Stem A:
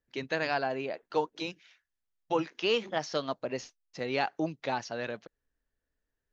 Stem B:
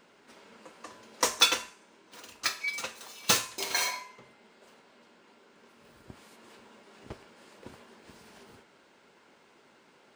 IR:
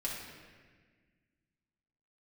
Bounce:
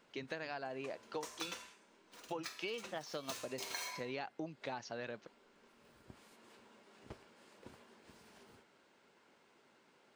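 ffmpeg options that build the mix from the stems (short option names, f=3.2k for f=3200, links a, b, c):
-filter_complex "[0:a]volume=-5.5dB[a];[1:a]alimiter=limit=-16dB:level=0:latency=1:release=206,volume=-8dB[b];[a][b]amix=inputs=2:normalize=0,acompressor=threshold=-39dB:ratio=6"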